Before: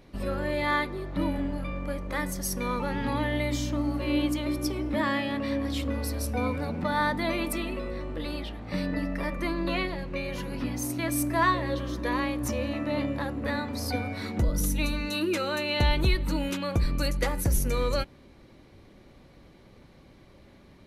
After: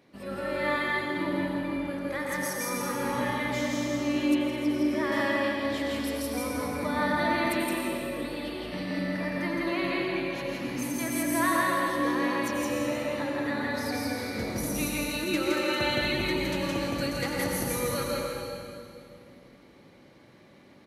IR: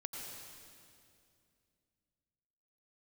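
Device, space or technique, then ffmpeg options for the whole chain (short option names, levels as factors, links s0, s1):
stadium PA: -filter_complex "[0:a]highpass=160,equalizer=f=1900:t=o:w=0.63:g=3,aecho=1:1:166.2|204.1:0.891|0.355[s0];[1:a]atrim=start_sample=2205[s1];[s0][s1]afir=irnorm=-1:irlink=0,asettb=1/sr,asplit=3[s2][s3][s4];[s2]atrim=end=4.354[s5];[s3]atrim=start=4.35:end=5.12,asetpts=PTS-STARTPTS,afade=t=in:d=0.004:c=qsin,afade=t=out:st=0.766:d=0.004:c=qsin,acrossover=split=3500[s6][s7];[s7]acompressor=threshold=0.00355:ratio=4:attack=1:release=60[s8];[s6][s8]amix=inputs=2:normalize=0[s9];[s4]atrim=start=5.116[s10];[s5][s9]acrossfade=d=0.004:c1=hsin:c2=qsin[s11];[s11][s10]acrossfade=d=0.004:c1=qsin:c2=hsin,volume=0.891"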